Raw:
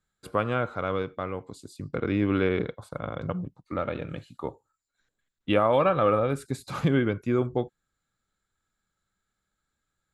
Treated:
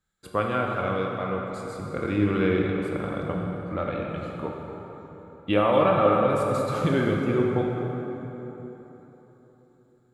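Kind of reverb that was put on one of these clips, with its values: plate-style reverb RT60 3.9 s, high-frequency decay 0.6×, DRR -1 dB; gain -1 dB

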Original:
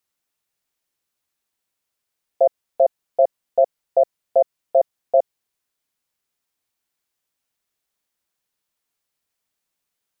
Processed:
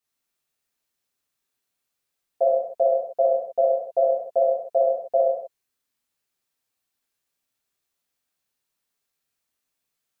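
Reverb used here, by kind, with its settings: non-linear reverb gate 0.28 s falling, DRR -6.5 dB; gain -8 dB

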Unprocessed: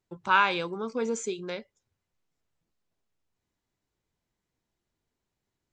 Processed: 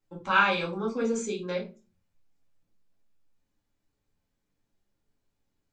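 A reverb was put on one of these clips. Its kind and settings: shoebox room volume 130 m³, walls furnished, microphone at 2.2 m; gain -4 dB

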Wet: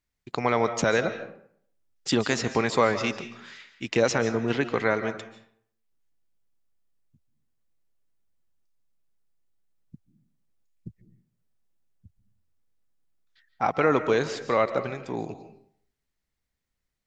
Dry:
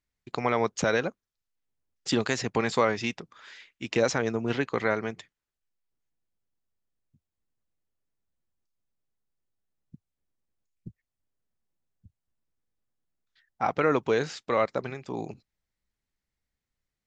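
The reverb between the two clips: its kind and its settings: digital reverb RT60 0.61 s, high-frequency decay 0.65×, pre-delay 0.105 s, DRR 10.5 dB; gain +2 dB

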